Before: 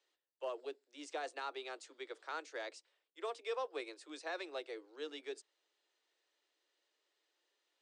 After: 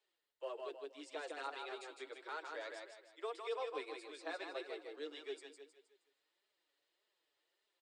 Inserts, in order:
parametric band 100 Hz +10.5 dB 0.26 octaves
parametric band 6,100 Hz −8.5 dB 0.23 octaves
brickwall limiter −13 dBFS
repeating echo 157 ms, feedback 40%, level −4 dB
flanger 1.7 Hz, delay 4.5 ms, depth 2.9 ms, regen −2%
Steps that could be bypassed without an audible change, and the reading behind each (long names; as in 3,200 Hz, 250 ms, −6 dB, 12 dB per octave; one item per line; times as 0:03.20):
parametric band 100 Hz: nothing at its input below 250 Hz
brickwall limiter −13 dBFS: peak of its input −28.0 dBFS